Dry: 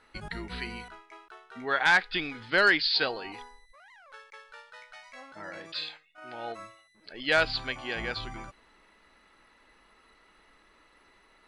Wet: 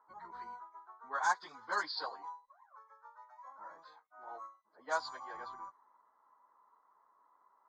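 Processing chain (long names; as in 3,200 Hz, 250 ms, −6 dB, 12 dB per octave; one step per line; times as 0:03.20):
pair of resonant band-passes 2,600 Hz, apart 2.7 octaves
time stretch by phase vocoder 0.67×
low-pass that shuts in the quiet parts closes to 1,300 Hz, open at −41 dBFS
level +9 dB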